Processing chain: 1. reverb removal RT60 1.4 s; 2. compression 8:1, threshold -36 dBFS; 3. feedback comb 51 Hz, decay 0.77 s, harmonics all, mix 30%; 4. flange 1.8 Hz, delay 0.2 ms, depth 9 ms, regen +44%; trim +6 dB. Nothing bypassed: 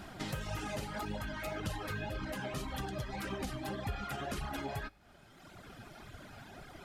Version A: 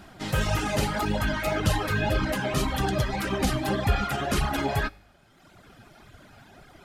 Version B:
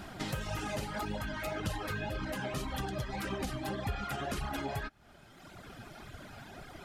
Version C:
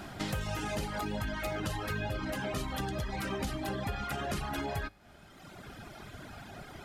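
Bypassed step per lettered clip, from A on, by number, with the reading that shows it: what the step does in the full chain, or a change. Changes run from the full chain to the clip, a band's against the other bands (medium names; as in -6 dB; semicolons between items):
2, mean gain reduction 9.5 dB; 3, loudness change +2.5 LU; 4, loudness change +4.0 LU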